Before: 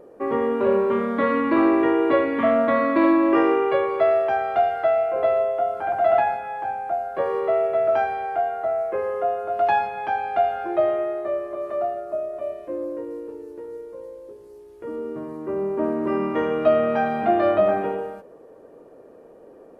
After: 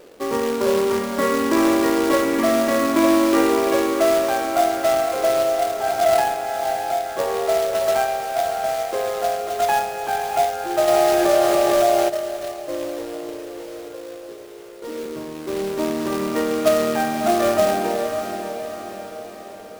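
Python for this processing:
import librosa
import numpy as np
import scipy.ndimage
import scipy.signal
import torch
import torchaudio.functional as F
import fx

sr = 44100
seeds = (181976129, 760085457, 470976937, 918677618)

y = fx.highpass(x, sr, hz=180.0, slope=24, at=(13.85, 15.06))
y = fx.quant_companded(y, sr, bits=4)
y = fx.echo_diffused(y, sr, ms=593, feedback_pct=54, wet_db=-8)
y = fx.env_flatten(y, sr, amount_pct=70, at=(10.87, 12.08), fade=0.02)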